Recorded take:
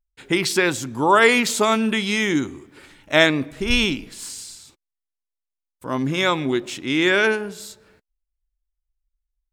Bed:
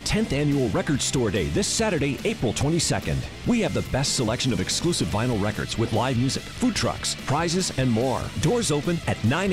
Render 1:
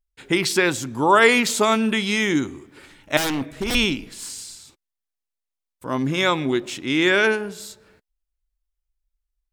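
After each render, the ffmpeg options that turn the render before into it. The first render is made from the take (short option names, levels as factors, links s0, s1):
-filter_complex "[0:a]asettb=1/sr,asplit=3[s0][s1][s2];[s0]atrim=end=3.174[s3];[s1]atrim=start=3.17:end=3.75,asetpts=PTS-STARTPTS,afade=t=in:d=0.004:c=qsin,afade=t=out:st=0.576:d=0.004:c=qsin,aeval=exprs='0.119*(abs(mod(val(0)/0.119+3,4)-2)-1)':c=same[s4];[s2]atrim=start=3.746[s5];[s3][s4]acrossfade=d=0.004:c1=hsin:c2=qsin[s6];[s6][s5]acrossfade=d=0.004:c1=qsin:c2=hsin"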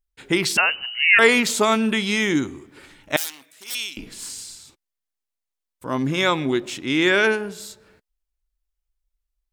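-filter_complex "[0:a]asettb=1/sr,asplit=3[s0][s1][s2];[s0]atrim=end=0.574[s3];[s1]atrim=start=0.57:end=1.19,asetpts=PTS-STARTPTS,afade=t=in:d=0.004:c=qsin,afade=t=out:st=0.616:d=0.004:c=qsin,lowpass=f=2600:t=q:w=0.5098,lowpass=f=2600:t=q:w=0.6013,lowpass=f=2600:t=q:w=0.9,lowpass=f=2600:t=q:w=2.563,afreqshift=-3100[s4];[s2]atrim=start=1.186[s5];[s3][s4]acrossfade=d=0.004:c1=hsin:c2=qsin[s6];[s6][s5]acrossfade=d=0.004:c1=qsin:c2=hsin,asettb=1/sr,asplit=3[s7][s8][s9];[s7]atrim=end=3.164[s10];[s8]atrim=start=3.16:end=3.97,asetpts=PTS-STARTPTS,afade=t=in:d=0.004:c=qsin,afade=t=out:st=0.806:d=0.004:c=qsin,aderivative[s11];[s9]atrim=start=3.966[s12];[s10][s11]acrossfade=d=0.004:c1=hsin:c2=qsin[s13];[s13][s12]acrossfade=d=0.004:c1=qsin:c2=hsin"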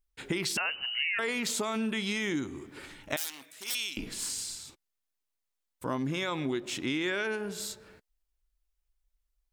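-af "alimiter=limit=0.251:level=0:latency=1:release=13,acompressor=threshold=0.0316:ratio=4"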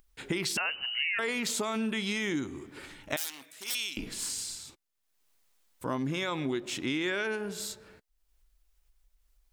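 -af "acompressor=mode=upward:threshold=0.00178:ratio=2.5"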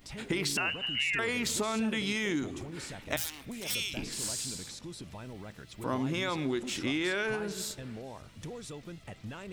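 -filter_complex "[1:a]volume=0.0944[s0];[0:a][s0]amix=inputs=2:normalize=0"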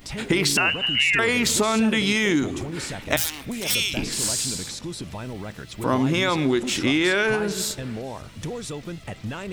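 -af "volume=3.35"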